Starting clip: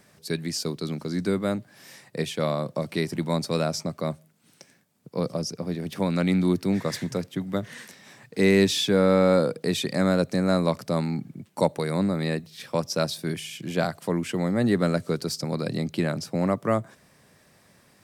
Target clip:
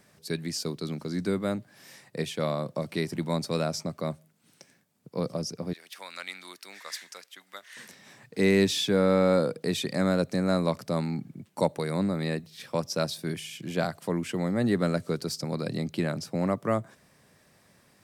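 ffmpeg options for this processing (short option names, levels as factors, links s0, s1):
-filter_complex "[0:a]asettb=1/sr,asplit=3[s0][s1][s2];[s0]atrim=end=5.734[s3];[s1]atrim=start=5.73:end=7.77,asetpts=PTS-STARTPTS,afade=t=in:d=0.004:c=qsin,afade=t=out:st=2.036:d=0.004:c=qsin,highpass=1400[s4];[s2]atrim=start=7.766[s5];[s3][s4]acrossfade=d=0.004:c1=hsin:c2=qsin[s6];[s6][s5]acrossfade=d=0.004:c1=qsin:c2=hsin,volume=0.708"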